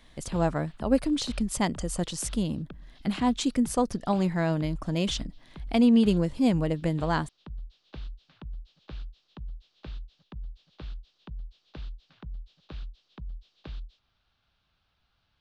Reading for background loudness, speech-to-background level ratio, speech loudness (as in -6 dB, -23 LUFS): -45.5 LUFS, 18.5 dB, -27.0 LUFS